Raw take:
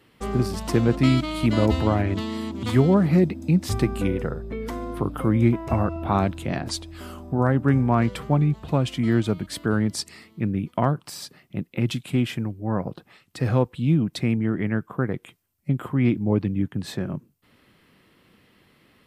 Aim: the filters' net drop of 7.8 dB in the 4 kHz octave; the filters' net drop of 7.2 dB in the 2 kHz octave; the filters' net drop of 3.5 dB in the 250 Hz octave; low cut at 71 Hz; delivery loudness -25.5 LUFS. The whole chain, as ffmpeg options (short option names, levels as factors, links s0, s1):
-af "highpass=71,equalizer=f=250:t=o:g=-4.5,equalizer=f=2000:t=o:g=-7.5,equalizer=f=4000:t=o:g=-8,volume=1.12"